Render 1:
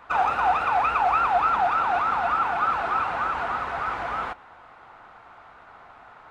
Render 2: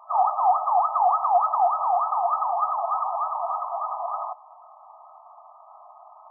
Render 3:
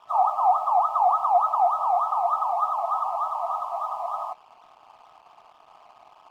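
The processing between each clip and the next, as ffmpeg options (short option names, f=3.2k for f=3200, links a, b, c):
-af "afftfilt=real='re*between(b*sr/4096,600,1300)':imag='im*between(b*sr/4096,600,1300)':win_size=4096:overlap=0.75,aemphasis=mode=reproduction:type=riaa,volume=1.5dB"
-af "aeval=exprs='sgn(val(0))*max(abs(val(0))-0.00211,0)':c=same"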